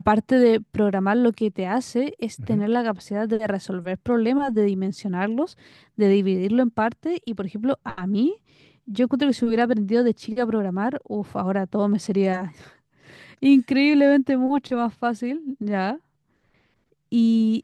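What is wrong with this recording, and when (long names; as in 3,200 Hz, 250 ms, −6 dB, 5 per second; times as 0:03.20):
0:12.07: drop-out 3.4 ms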